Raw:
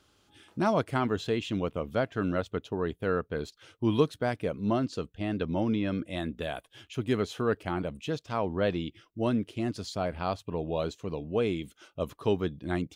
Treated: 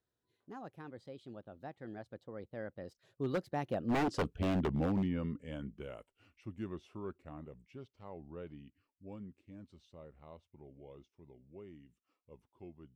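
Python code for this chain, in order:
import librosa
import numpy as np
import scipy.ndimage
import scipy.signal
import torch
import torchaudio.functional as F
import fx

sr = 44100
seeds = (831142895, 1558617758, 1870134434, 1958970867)

y = fx.doppler_pass(x, sr, speed_mps=56, closest_m=12.0, pass_at_s=4.27)
y = fx.tilt_shelf(y, sr, db=4.5, hz=1500.0)
y = 10.0 ** (-27.5 / 20.0) * (np.abs((y / 10.0 ** (-27.5 / 20.0) + 3.0) % 4.0 - 2.0) - 1.0)
y = y * librosa.db_to_amplitude(1.5)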